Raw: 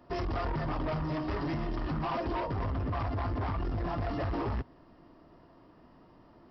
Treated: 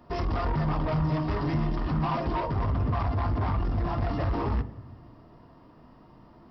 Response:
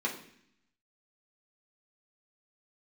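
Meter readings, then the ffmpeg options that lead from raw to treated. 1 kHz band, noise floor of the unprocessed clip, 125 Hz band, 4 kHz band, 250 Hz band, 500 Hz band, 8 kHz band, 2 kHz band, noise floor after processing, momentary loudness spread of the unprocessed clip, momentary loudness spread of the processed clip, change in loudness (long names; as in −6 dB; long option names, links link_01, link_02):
+4.0 dB, −58 dBFS, +7.0 dB, +2.5 dB, +4.5 dB, +2.5 dB, can't be measured, +2.0 dB, −54 dBFS, 2 LU, 3 LU, +5.0 dB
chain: -filter_complex "[0:a]asplit=2[link_01][link_02];[1:a]atrim=start_sample=2205,asetrate=22932,aresample=44100,lowshelf=frequency=330:gain=7[link_03];[link_02][link_03]afir=irnorm=-1:irlink=0,volume=-21.5dB[link_04];[link_01][link_04]amix=inputs=2:normalize=0,volume=3.5dB"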